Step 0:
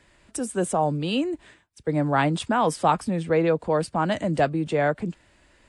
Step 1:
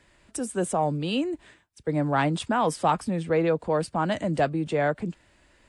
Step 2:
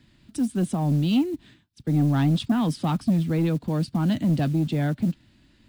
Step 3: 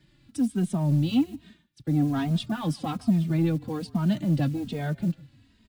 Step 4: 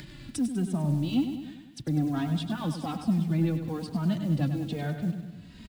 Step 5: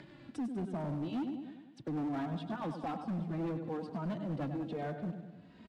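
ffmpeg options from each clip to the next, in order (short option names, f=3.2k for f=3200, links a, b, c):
-af "acontrast=33,volume=-7dB"
-af "equalizer=f=125:t=o:w=1:g=9,equalizer=f=250:t=o:w=1:g=11,equalizer=f=500:t=o:w=1:g=-11,equalizer=f=1k:t=o:w=1:g=-5,equalizer=f=2k:t=o:w=1:g=-5,equalizer=f=4k:t=o:w=1:g=7,equalizer=f=8k:t=o:w=1:g=-9,acrusher=bits=7:mode=log:mix=0:aa=0.000001,asoftclip=type=tanh:threshold=-14dB"
-filter_complex "[0:a]asplit=3[a][b][c];[b]adelay=151,afreqshift=-34,volume=-23dB[d];[c]adelay=302,afreqshift=-68,volume=-33.2dB[e];[a][d][e]amix=inputs=3:normalize=0,asplit=2[f][g];[g]adelay=2.9,afreqshift=-1.2[h];[f][h]amix=inputs=2:normalize=1"
-af "acompressor=mode=upward:threshold=-26dB:ratio=2.5,aecho=1:1:99|198|297|396|495|594|693:0.355|0.206|0.119|0.0692|0.0402|0.0233|0.0135,volume=-3.5dB"
-af "bandpass=f=630:t=q:w=0.84:csg=0,asoftclip=type=hard:threshold=-32.5dB"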